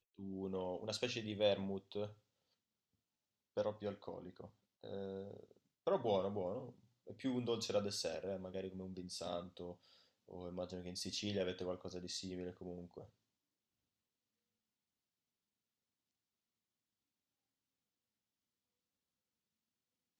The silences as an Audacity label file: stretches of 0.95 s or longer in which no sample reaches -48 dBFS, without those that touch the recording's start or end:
2.090000	3.570000	silence